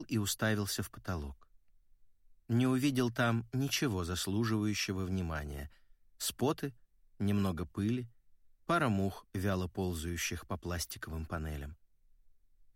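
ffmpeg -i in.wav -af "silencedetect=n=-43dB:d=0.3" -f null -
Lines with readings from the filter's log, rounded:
silence_start: 1.32
silence_end: 2.50 | silence_duration: 1.18
silence_start: 5.66
silence_end: 6.20 | silence_duration: 0.54
silence_start: 6.70
silence_end: 7.20 | silence_duration: 0.51
silence_start: 8.05
silence_end: 8.69 | silence_duration: 0.65
silence_start: 11.72
silence_end: 12.75 | silence_duration: 1.04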